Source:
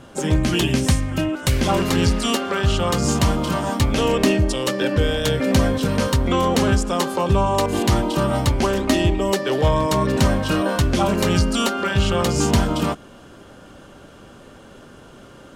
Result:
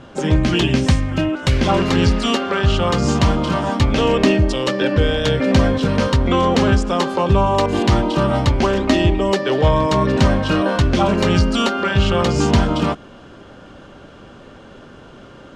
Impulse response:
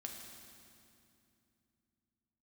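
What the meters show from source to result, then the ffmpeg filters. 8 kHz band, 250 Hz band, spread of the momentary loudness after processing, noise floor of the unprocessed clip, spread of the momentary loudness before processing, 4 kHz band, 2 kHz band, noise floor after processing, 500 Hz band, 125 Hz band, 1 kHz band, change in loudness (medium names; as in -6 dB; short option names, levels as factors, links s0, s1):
-4.5 dB, +3.0 dB, 3 LU, -44 dBFS, 3 LU, +2.0 dB, +3.0 dB, -42 dBFS, +3.0 dB, +3.0 dB, +3.0 dB, +3.0 dB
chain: -af "lowpass=4900,volume=1.41"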